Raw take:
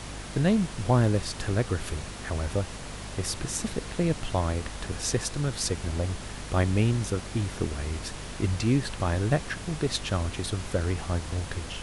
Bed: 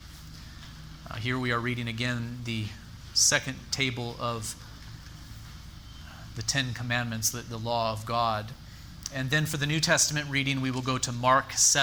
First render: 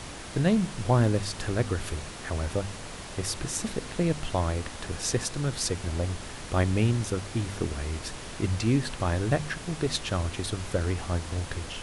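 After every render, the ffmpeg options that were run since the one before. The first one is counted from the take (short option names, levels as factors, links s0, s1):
-af "bandreject=f=50:t=h:w=4,bandreject=f=100:t=h:w=4,bandreject=f=150:t=h:w=4,bandreject=f=200:t=h:w=4,bandreject=f=250:t=h:w=4"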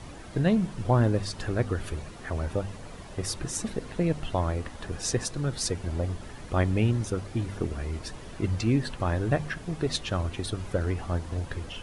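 -af "afftdn=nr=10:nf=-40"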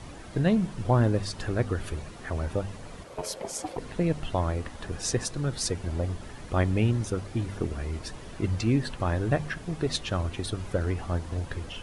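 -filter_complex "[0:a]asplit=3[s0][s1][s2];[s0]afade=t=out:st=3.03:d=0.02[s3];[s1]aeval=exprs='val(0)*sin(2*PI*530*n/s)':c=same,afade=t=in:st=3.03:d=0.02,afade=t=out:st=3.77:d=0.02[s4];[s2]afade=t=in:st=3.77:d=0.02[s5];[s3][s4][s5]amix=inputs=3:normalize=0"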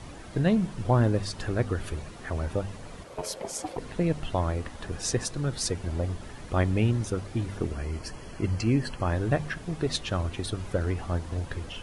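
-filter_complex "[0:a]asettb=1/sr,asplit=3[s0][s1][s2];[s0]atrim=end=7.734[s3];[s1]atrim=start=7.73:end=9.11,asetpts=PTS-STARTPTS,afade=t=in:d=0.004:c=qsin,afade=t=out:st=1.376:d=0.004:c=qsin,asuperstop=centerf=3700:order=12:qfactor=6.4[s4];[s2]atrim=start=9.106[s5];[s3][s4]acrossfade=d=0.004:c1=hsin:c2=qsin[s6];[s6][s5]acrossfade=d=0.004:c1=qsin:c2=hsin"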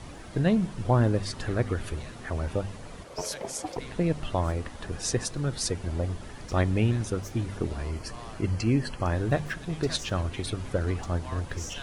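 -filter_complex "[1:a]volume=0.106[s0];[0:a][s0]amix=inputs=2:normalize=0"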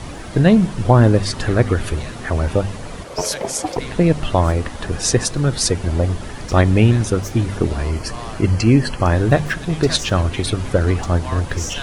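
-af "volume=3.76,alimiter=limit=0.891:level=0:latency=1"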